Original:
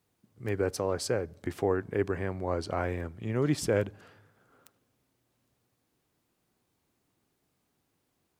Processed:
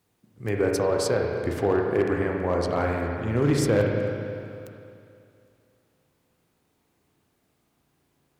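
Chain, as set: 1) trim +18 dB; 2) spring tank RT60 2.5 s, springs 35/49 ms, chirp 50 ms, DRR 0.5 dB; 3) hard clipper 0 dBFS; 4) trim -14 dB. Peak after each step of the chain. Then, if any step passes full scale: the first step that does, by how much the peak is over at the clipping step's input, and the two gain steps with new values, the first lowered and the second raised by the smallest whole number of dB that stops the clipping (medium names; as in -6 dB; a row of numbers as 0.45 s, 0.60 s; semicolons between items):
+4.0 dBFS, +5.5 dBFS, 0.0 dBFS, -14.0 dBFS; step 1, 5.5 dB; step 1 +12 dB, step 4 -8 dB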